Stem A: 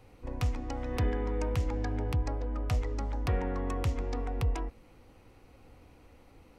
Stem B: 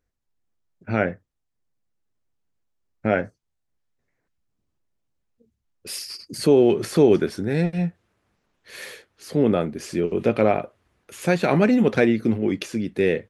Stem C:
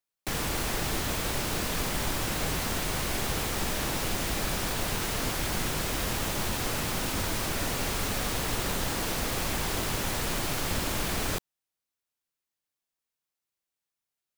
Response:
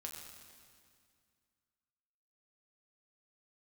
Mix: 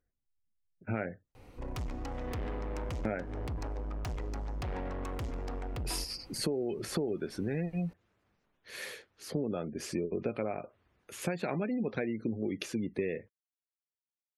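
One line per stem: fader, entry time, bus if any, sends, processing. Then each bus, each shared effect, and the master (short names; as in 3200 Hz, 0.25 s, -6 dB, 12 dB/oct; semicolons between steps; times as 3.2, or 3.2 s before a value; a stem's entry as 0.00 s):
+1.0 dB, 1.35 s, send -14 dB, soft clip -35.5 dBFS, distortion -8 dB
-4.5 dB, 0.00 s, no send, spectral gate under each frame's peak -30 dB strong
off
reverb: on, RT60 2.1 s, pre-delay 6 ms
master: compressor 16:1, threshold -29 dBFS, peak gain reduction 15 dB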